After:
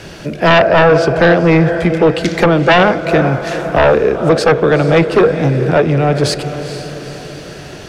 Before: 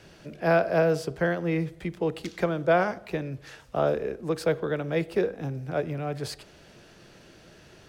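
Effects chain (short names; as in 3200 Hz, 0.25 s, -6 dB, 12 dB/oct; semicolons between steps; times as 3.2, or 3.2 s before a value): treble ducked by the level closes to 2800 Hz, closed at -19 dBFS; diffused feedback echo 0.453 s, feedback 51%, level -12 dB; sine folder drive 10 dB, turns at -9.5 dBFS; gain +5.5 dB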